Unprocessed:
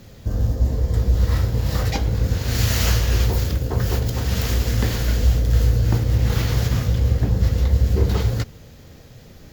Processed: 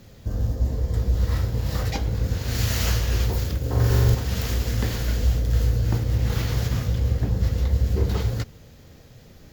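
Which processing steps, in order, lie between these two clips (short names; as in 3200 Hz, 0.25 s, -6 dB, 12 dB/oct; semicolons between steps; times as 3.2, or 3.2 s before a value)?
3.59–4.15 flutter echo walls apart 7.4 m, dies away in 1.3 s; gain -4 dB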